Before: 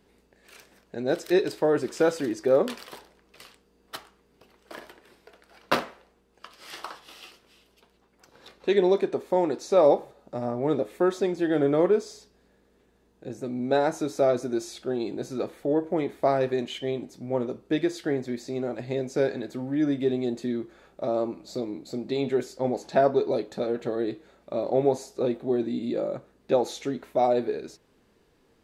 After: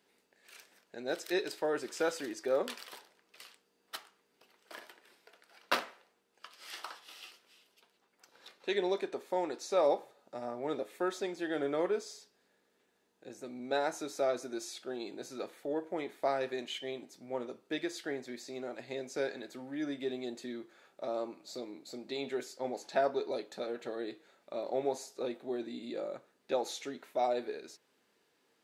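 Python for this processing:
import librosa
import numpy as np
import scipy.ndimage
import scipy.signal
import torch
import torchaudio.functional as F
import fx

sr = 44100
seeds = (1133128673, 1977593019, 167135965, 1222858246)

y = scipy.signal.sosfilt(scipy.signal.butter(2, 300.0, 'highpass', fs=sr, output='sos'), x)
y = fx.peak_eq(y, sr, hz=390.0, db=-7.0, octaves=2.6)
y = fx.notch(y, sr, hz=1100.0, q=20.0)
y = F.gain(torch.from_numpy(y), -3.0).numpy()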